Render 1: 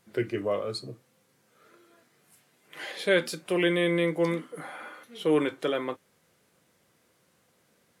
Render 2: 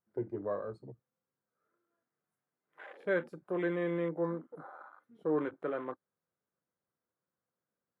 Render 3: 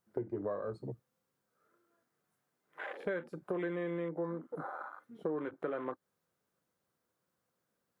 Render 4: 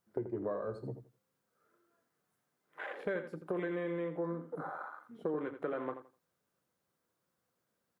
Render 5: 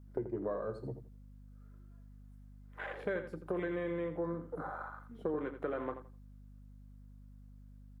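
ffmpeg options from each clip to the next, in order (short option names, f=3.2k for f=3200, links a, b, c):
-af "highshelf=f=2k:t=q:w=1.5:g=-11,afwtdn=0.0126,volume=-8dB"
-af "acompressor=threshold=-41dB:ratio=8,volume=7.5dB"
-af "aecho=1:1:84|168|252:0.299|0.0597|0.0119"
-af "aeval=exprs='val(0)+0.00224*(sin(2*PI*50*n/s)+sin(2*PI*2*50*n/s)/2+sin(2*PI*3*50*n/s)/3+sin(2*PI*4*50*n/s)/4+sin(2*PI*5*50*n/s)/5)':c=same"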